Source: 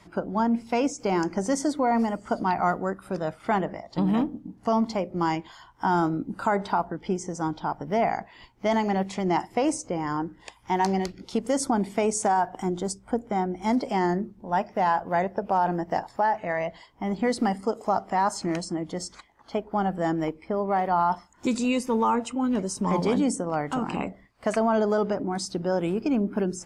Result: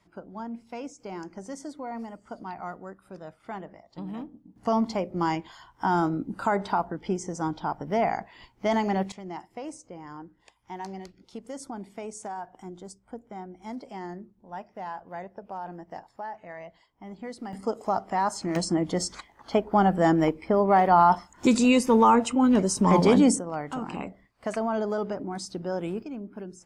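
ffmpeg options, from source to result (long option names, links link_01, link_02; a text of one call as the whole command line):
ffmpeg -i in.wav -af "asetnsamples=nb_out_samples=441:pad=0,asendcmd='4.56 volume volume -1dB;9.12 volume volume -13.5dB;17.53 volume volume -2dB;18.56 volume volume 5dB;23.39 volume volume -5dB;26.03 volume volume -13dB',volume=-13dB" out.wav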